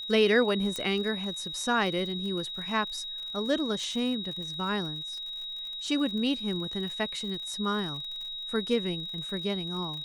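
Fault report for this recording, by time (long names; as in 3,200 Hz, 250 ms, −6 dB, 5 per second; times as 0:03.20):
surface crackle 53 per second −38 dBFS
whistle 3,800 Hz −35 dBFS
0:00.76: click −18 dBFS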